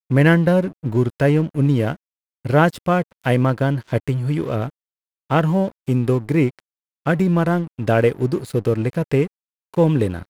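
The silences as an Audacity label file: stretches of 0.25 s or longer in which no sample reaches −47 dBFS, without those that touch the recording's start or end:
1.960000	2.450000	silence
4.700000	5.300000	silence
6.600000	7.060000	silence
9.270000	9.740000	silence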